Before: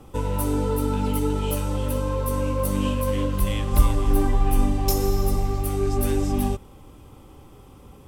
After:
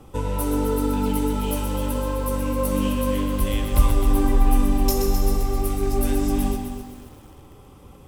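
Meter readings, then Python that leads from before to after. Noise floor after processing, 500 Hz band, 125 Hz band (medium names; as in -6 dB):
-46 dBFS, +0.5 dB, -1.5 dB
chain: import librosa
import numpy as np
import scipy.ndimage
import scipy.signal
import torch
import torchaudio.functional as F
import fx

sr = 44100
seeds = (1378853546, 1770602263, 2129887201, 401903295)

y = fx.echo_feedback(x, sr, ms=126, feedback_pct=37, wet_db=-7.5)
y = fx.echo_crushed(y, sr, ms=260, feedback_pct=35, bits=7, wet_db=-9.5)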